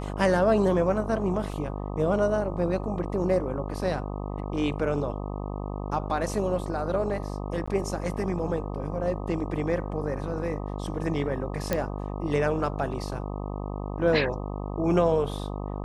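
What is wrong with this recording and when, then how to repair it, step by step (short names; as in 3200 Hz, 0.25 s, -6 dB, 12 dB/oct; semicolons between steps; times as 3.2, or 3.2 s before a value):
buzz 50 Hz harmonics 25 -33 dBFS
1.52 gap 2.8 ms
7.66–7.67 gap 15 ms
11.73 pop -11 dBFS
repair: de-click; de-hum 50 Hz, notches 25; interpolate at 1.52, 2.8 ms; interpolate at 7.66, 15 ms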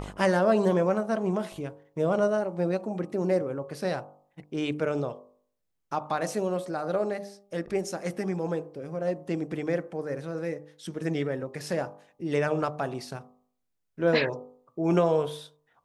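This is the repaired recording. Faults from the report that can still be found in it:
none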